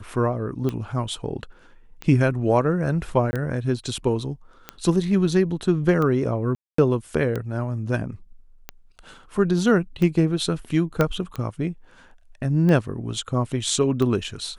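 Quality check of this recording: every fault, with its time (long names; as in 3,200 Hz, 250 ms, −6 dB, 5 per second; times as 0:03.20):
scratch tick 45 rpm −15 dBFS
0:03.31–0:03.33: drop-out 20 ms
0:06.55–0:06.78: drop-out 234 ms
0:11.01: click −7 dBFS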